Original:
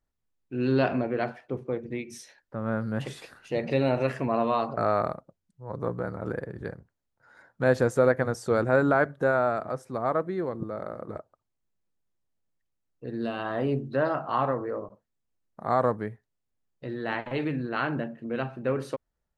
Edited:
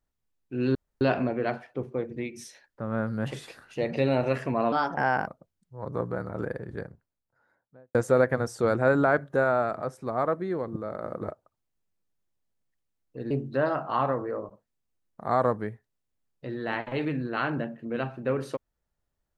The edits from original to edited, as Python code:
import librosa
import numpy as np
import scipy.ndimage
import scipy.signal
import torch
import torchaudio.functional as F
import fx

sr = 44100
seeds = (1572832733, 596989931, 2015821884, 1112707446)

y = fx.studio_fade_out(x, sr, start_s=6.52, length_s=1.3)
y = fx.edit(y, sr, fx.insert_room_tone(at_s=0.75, length_s=0.26),
    fx.speed_span(start_s=4.46, length_s=0.69, speed=1.24),
    fx.clip_gain(start_s=10.91, length_s=0.26, db=3.5),
    fx.cut(start_s=13.18, length_s=0.52), tone=tone)